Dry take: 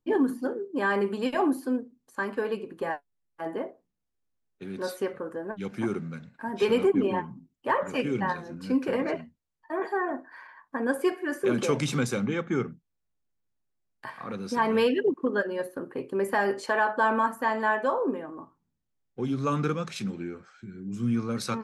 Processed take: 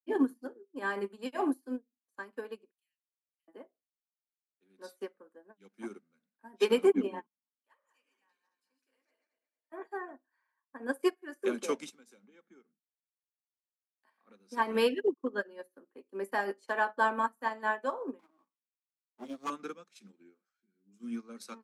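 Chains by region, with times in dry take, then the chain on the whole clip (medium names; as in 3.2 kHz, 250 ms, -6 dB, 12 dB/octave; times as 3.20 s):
2.71–3.48 s: steep high-pass 2.5 kHz 48 dB/octave + peaking EQ 4.8 kHz -6.5 dB 1.5 oct
7.26–9.72 s: backward echo that repeats 112 ms, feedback 57%, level -4 dB + low-pass 4 kHz 6 dB/octave + differentiator
11.89–14.27 s: band-stop 1.2 kHz, Q 22 + compression 2.5:1, threshold -35 dBFS
18.19–19.50 s: comb filter that takes the minimum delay 0.89 ms + waveshaping leveller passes 1
whole clip: steep high-pass 200 Hz 48 dB/octave; treble shelf 5.6 kHz +9 dB; upward expansion 2.5:1, over -41 dBFS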